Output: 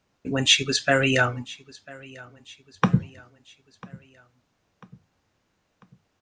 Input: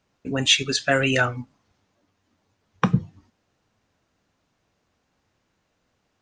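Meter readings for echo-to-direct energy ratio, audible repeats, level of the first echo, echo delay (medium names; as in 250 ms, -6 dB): -21.0 dB, 3, -22.0 dB, 995 ms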